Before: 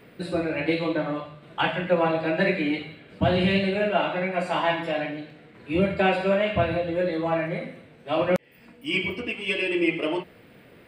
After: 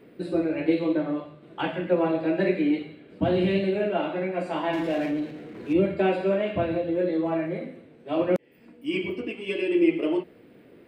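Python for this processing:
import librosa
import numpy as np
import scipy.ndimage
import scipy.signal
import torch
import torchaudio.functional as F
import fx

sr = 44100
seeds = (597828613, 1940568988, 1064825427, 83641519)

y = fx.power_curve(x, sr, exponent=0.7, at=(4.73, 5.73))
y = fx.peak_eq(y, sr, hz=330.0, db=12.0, octaves=1.5)
y = y * librosa.db_to_amplitude(-8.0)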